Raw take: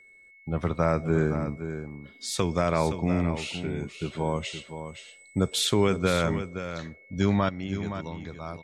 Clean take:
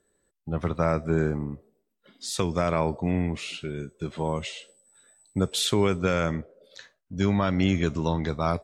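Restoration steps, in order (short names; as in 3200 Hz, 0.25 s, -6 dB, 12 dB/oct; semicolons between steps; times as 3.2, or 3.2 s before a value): notch 2200 Hz, Q 30; inverse comb 0.519 s -10 dB; gain correction +12 dB, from 7.49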